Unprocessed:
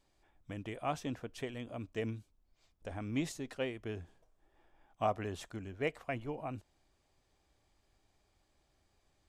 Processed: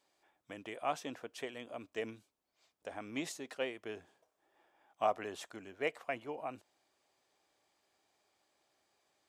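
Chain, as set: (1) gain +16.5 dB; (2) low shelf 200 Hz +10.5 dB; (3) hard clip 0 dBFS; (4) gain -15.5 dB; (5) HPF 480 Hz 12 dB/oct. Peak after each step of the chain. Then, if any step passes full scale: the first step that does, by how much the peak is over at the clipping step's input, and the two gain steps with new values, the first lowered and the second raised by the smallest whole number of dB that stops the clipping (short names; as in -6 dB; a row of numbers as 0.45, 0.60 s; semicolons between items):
-3.5, -2.5, -2.5, -18.0, -18.0 dBFS; no overload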